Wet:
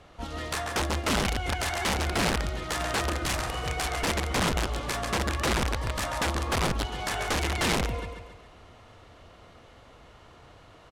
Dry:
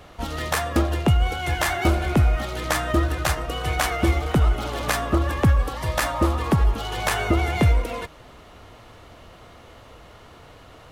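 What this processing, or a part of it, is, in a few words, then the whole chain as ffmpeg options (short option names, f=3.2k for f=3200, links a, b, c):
overflowing digital effects unit: -filter_complex "[0:a]asplit=3[a][b][c];[a]afade=t=out:st=2.79:d=0.02[d];[b]asplit=2[e][f];[f]adelay=46,volume=-2.5dB[g];[e][g]amix=inputs=2:normalize=0,afade=t=in:st=2.79:d=0.02,afade=t=out:st=3.64:d=0.02[h];[c]afade=t=in:st=3.64:d=0.02[i];[d][h][i]amix=inputs=3:normalize=0,aecho=1:1:138|276|414|552|690|828:0.501|0.231|0.106|0.0488|0.0224|0.0103,aeval=exprs='(mod(5.01*val(0)+1,2)-1)/5.01':c=same,lowpass=9.7k,volume=-7dB"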